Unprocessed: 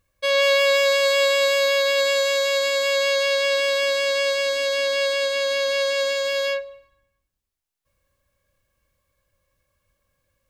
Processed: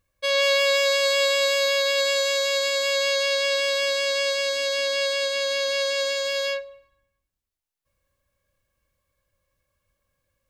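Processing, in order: dynamic EQ 5600 Hz, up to +5 dB, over -38 dBFS, Q 0.71; gain -3.5 dB

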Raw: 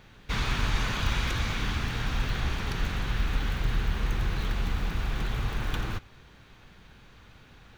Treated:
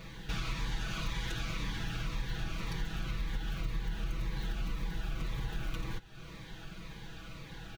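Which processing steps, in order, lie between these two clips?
comb 6.1 ms, depth 92%; compressor 3:1, threshold -42 dBFS, peak gain reduction 17.5 dB; cascading phaser falling 1.9 Hz; gain +5 dB

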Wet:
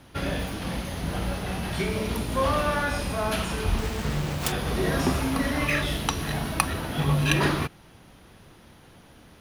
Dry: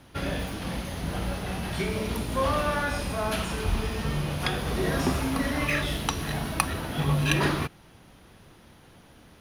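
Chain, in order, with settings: 3.78–4.52 self-modulated delay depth 0.75 ms; gain +1.5 dB

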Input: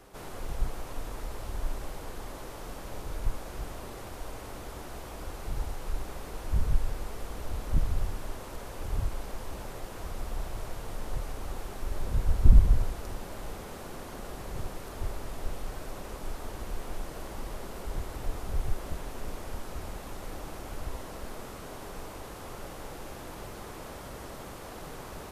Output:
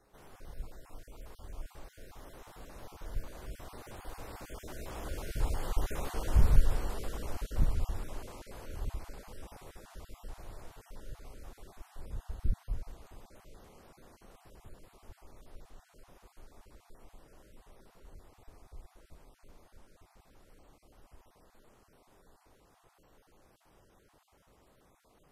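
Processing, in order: random spectral dropouts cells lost 24%; Doppler pass-by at 6.08, 11 m/s, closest 9.8 m; gain +4 dB

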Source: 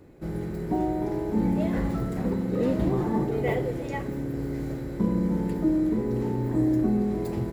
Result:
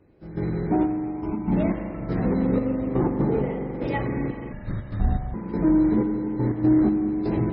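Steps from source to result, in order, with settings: 2.97–3.75 high shelf 2400 Hz -9 dB; in parallel at -3 dB: soft clip -25.5 dBFS, distortion -11 dB; 0.83–1.52 on the sum: fixed phaser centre 2600 Hz, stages 8; step gate "...xxxx...x.xx" 122 bpm -12 dB; added harmonics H 4 -26 dB, 6 -26 dB, 8 -40 dB, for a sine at -10.5 dBFS; spring tank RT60 4 s, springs 42 ms, chirp 55 ms, DRR 4 dB; 4.52–5.34 frequency shift -250 Hz; gain +1 dB; MP3 16 kbps 22050 Hz

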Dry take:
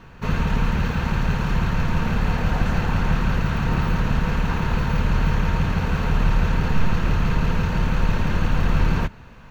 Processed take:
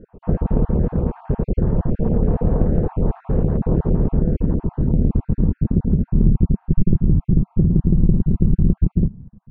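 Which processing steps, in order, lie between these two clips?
random spectral dropouts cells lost 32%; low-pass sweep 450 Hz -> 190 Hz, 3.58–6.72; Doppler distortion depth 0.84 ms; gain +3.5 dB

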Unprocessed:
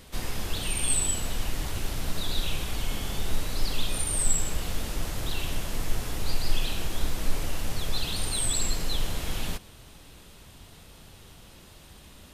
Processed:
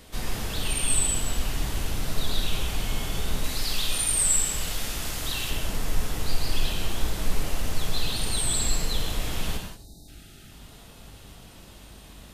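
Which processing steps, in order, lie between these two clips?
9.67–10.08 spectral delete 450–3600 Hz; 3.44–5.5 tilt shelf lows -4.5 dB, about 1200 Hz; 9.85–10.51 spectral gain 410–1200 Hz -30 dB; buzz 50 Hz, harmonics 17, -58 dBFS -4 dB/oct; non-linear reverb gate 0.21 s flat, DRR 2 dB

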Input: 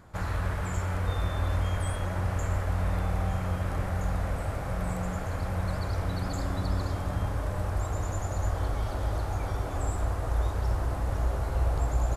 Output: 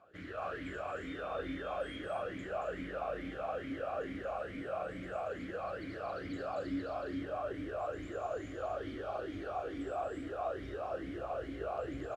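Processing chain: loudspeakers at several distances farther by 78 m -2 dB, 92 m -3 dB; vowel sweep a-i 2.3 Hz; gain +4.5 dB

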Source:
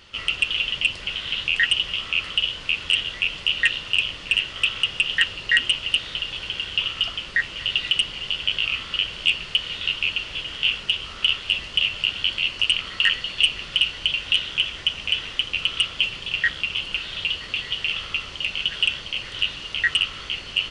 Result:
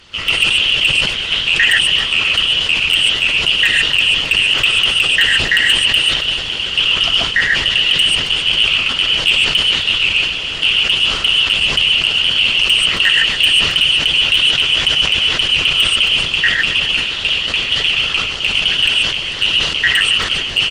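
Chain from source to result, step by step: bell 9100 Hz +10.5 dB 1.9 oct; non-linear reverb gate 0.16 s rising, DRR -1.5 dB; harmonic-percussive split harmonic -10 dB; in parallel at -0.5 dB: level quantiser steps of 12 dB; on the sum: sine folder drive 6 dB, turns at 1.5 dBFS; high shelf 4800 Hz -9.5 dB; on a send: feedback echo 0.271 s, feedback 49%, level -18 dB; on the sum: sustainer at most 55 dB/s; gain -4 dB

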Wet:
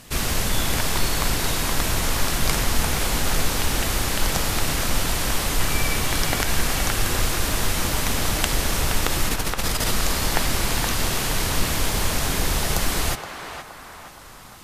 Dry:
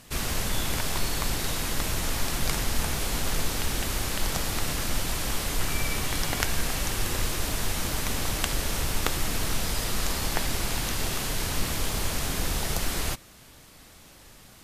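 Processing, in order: 9.29–9.91 negative-ratio compressor -28 dBFS, ratio -0.5; on a send: narrowing echo 0.471 s, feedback 54%, band-pass 1100 Hz, level -4.5 dB; on the sum: maximiser +6.5 dB; gain -1 dB

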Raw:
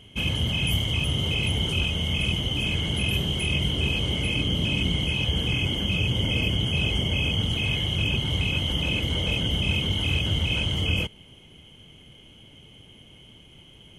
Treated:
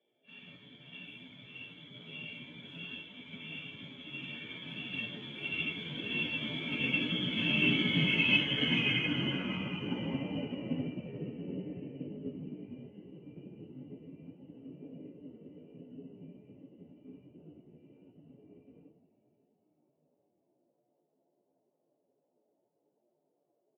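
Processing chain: Doppler pass-by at 5.09, 25 m/s, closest 23 m; low-pass sweep 2000 Hz -> 440 Hz, 5.12–6.58; frequency-shifting echo 0.333 s, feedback 44%, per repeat -57 Hz, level -10.5 dB; band noise 330–750 Hz -60 dBFS; shoebox room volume 360 m³, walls furnished, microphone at 5.6 m; plain phase-vocoder stretch 1.7×; HPF 210 Hz 24 dB/oct; bell 720 Hz -12 dB 2.2 oct; upward expander 1.5:1, over -55 dBFS

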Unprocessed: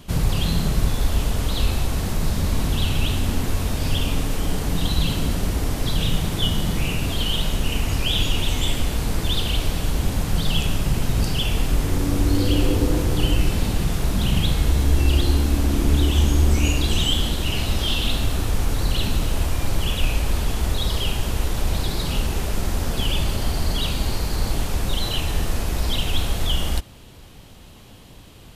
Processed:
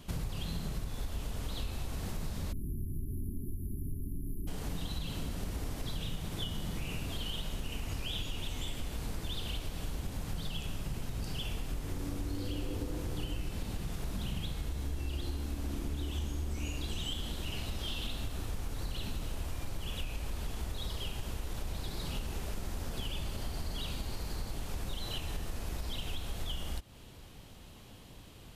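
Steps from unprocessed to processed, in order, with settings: spectral delete 2.53–4.48, 430–10000 Hz; compressor 5:1, threshold -26 dBFS, peak gain reduction 13 dB; gain -7.5 dB

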